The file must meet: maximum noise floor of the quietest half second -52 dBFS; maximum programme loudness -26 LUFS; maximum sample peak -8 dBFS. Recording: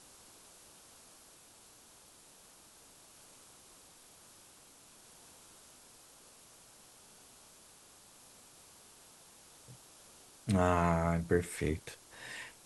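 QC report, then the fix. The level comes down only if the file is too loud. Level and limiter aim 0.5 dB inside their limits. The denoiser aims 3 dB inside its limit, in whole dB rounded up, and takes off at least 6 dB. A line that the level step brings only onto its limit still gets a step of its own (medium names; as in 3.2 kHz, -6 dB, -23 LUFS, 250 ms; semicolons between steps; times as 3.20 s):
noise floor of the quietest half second -59 dBFS: pass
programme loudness -33.5 LUFS: pass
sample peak -15.5 dBFS: pass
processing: none needed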